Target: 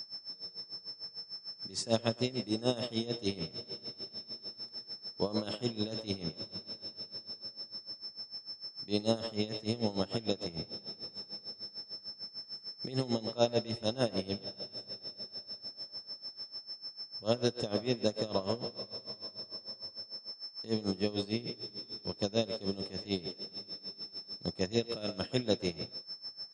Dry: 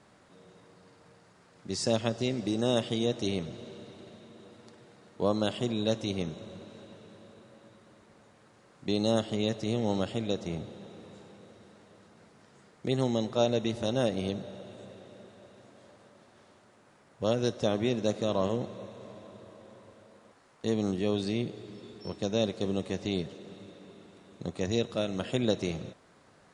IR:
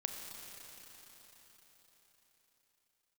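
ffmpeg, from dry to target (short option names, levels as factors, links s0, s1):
-filter_complex "[0:a]asplit=2[s0][s1];[s1]adelay=120,highpass=300,lowpass=3400,asoftclip=type=hard:threshold=0.0841,volume=0.398[s2];[s0][s2]amix=inputs=2:normalize=0,aeval=exprs='val(0)+0.0141*sin(2*PI*5300*n/s)':c=same,aeval=exprs='val(0)*pow(10,-18*(0.5-0.5*cos(2*PI*6.7*n/s))/20)':c=same"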